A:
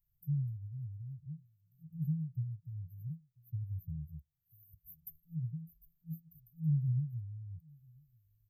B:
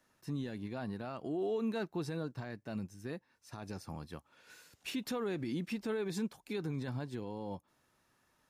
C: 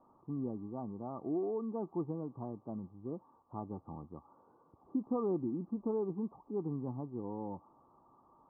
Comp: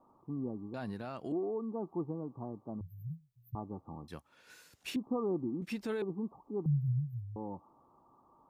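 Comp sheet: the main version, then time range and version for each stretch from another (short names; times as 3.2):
C
0.74–1.32 from B
2.81–3.55 from A
4.08–4.96 from B
5.62–6.02 from B
6.66–7.36 from A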